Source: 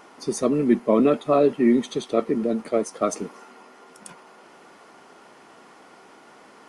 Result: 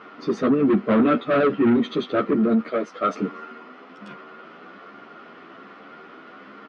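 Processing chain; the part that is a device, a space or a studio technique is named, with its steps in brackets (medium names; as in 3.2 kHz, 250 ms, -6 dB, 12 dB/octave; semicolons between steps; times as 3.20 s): 2.59–3.18 s: bass shelf 360 Hz -12 dB; barber-pole flanger into a guitar amplifier (endless flanger 11 ms +1.2 Hz; saturation -23.5 dBFS, distortion -8 dB; cabinet simulation 87–3700 Hz, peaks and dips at 200 Hz +5 dB, 290 Hz +4 dB, 880 Hz -9 dB, 1.3 kHz +8 dB); trim +7.5 dB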